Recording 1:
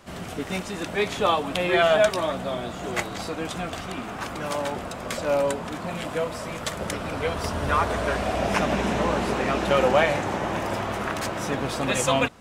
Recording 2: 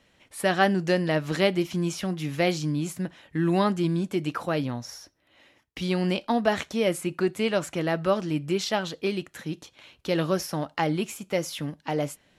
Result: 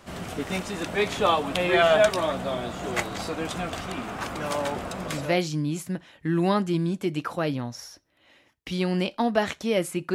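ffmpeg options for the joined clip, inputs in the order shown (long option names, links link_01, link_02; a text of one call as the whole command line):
ffmpeg -i cue0.wav -i cue1.wav -filter_complex "[0:a]apad=whole_dur=10.14,atrim=end=10.14,atrim=end=5.4,asetpts=PTS-STARTPTS[link_01];[1:a]atrim=start=2:end=7.24,asetpts=PTS-STARTPTS[link_02];[link_01][link_02]acrossfade=duration=0.5:curve1=qsin:curve2=qsin" out.wav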